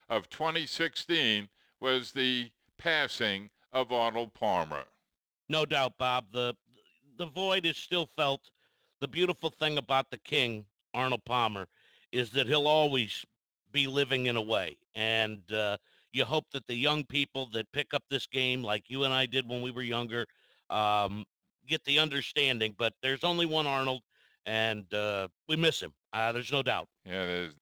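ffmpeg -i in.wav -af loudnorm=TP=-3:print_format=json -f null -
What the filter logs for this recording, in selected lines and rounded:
"input_i" : "-31.0",
"input_tp" : "-11.6",
"input_lra" : "2.6",
"input_thresh" : "-41.3",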